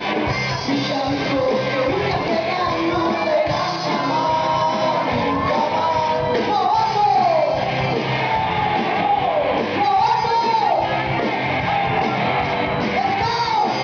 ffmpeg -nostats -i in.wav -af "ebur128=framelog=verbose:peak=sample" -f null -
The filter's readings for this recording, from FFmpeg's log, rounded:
Integrated loudness:
  I:         -19.1 LUFS
  Threshold: -29.1 LUFS
Loudness range:
  LRA:         1.4 LU
  Threshold: -38.9 LUFS
  LRA low:   -19.8 LUFS
  LRA high:  -18.3 LUFS
Sample peak:
  Peak:       -8.9 dBFS